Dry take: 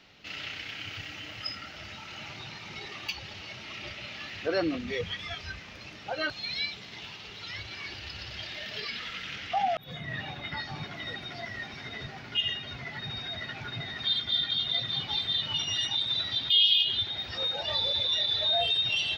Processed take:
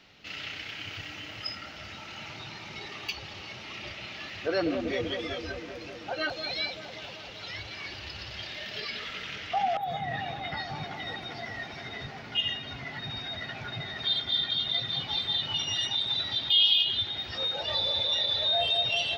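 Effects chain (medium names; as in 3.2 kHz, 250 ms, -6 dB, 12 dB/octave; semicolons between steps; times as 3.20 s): feedback echo behind a band-pass 193 ms, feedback 75%, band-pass 550 Hz, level -5.5 dB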